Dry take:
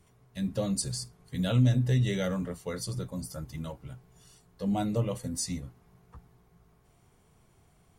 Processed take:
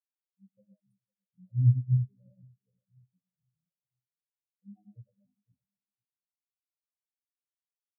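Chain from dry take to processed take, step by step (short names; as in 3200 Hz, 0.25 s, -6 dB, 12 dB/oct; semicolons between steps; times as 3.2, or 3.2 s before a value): feedback echo 0.506 s, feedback 51%, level -8 dB; on a send at -2 dB: reverb RT60 0.35 s, pre-delay 75 ms; on the sum: spectral expander 4:1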